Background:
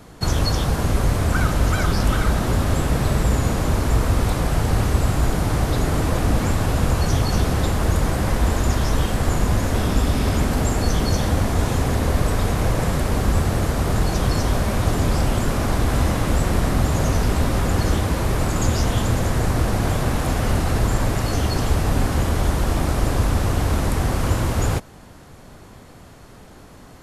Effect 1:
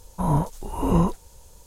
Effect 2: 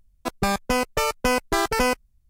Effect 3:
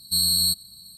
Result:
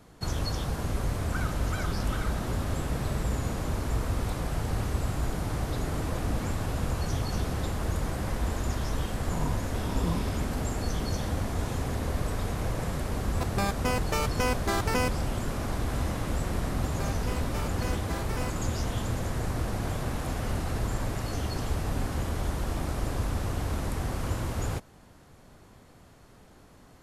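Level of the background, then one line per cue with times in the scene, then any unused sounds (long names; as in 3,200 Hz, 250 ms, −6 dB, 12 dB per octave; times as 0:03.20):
background −10.5 dB
0:09.12: mix in 1 −12.5 dB + adaptive Wiener filter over 9 samples
0:13.15: mix in 2 −7 dB
0:16.57: mix in 2 −17 dB
not used: 3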